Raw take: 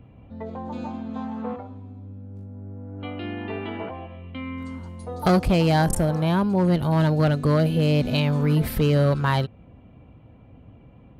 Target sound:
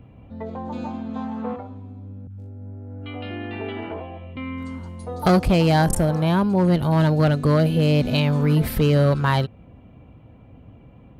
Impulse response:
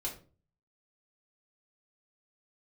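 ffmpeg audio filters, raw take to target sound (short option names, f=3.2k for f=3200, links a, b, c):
-filter_complex "[0:a]asettb=1/sr,asplit=3[a][b][c];[a]atrim=end=2.274[d];[b]atrim=start=2.27:end=4.37,asetpts=PTS-STARTPTS,afade=t=in:d=0.004:c=qsin,afade=t=out:st=2.096:d=0.004:c=qsin,acrossover=split=210|1100[e][f][g];[g]adelay=30[h];[f]adelay=110[i];[e][i][h]amix=inputs=3:normalize=0,atrim=end_sample=92610[j];[c]atrim=start=4.366[k];[d][j]acrossfade=d=0.004:c1=hsin:c2=qsin[l];[l][k]acrossfade=d=0.004:c1=qsin:c2=hsin,volume=2dB"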